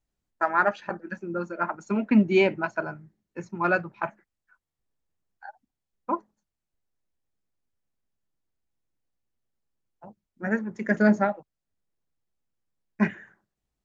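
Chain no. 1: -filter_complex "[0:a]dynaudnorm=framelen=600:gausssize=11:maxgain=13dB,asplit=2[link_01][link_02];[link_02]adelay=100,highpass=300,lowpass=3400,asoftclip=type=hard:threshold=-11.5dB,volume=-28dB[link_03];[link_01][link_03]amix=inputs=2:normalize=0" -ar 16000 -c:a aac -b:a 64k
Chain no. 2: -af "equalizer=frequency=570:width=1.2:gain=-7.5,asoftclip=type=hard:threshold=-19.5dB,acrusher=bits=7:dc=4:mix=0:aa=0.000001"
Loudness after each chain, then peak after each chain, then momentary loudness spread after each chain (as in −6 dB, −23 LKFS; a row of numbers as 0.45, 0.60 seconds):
−22.5, −30.0 LKFS; −2.5, −19.5 dBFS; 19, 14 LU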